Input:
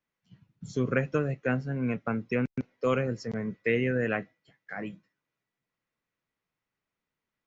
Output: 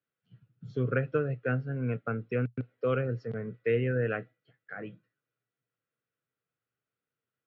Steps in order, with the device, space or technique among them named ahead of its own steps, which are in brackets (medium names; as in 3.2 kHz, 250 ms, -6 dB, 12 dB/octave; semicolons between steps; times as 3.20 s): guitar cabinet (cabinet simulation 94–3700 Hz, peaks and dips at 120 Hz +10 dB, 200 Hz -4 dB, 460 Hz +6 dB, 950 Hz -10 dB, 1.4 kHz +7 dB, 2.1 kHz -5 dB); trim -4.5 dB